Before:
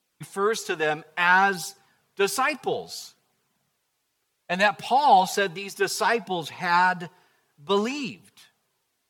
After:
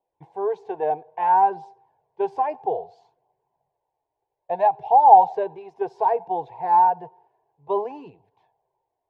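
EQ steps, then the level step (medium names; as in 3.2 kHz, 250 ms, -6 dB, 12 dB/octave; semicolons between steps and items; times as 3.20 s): resonant low-pass 910 Hz, resonance Q 4.4; static phaser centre 530 Hz, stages 4; -1.0 dB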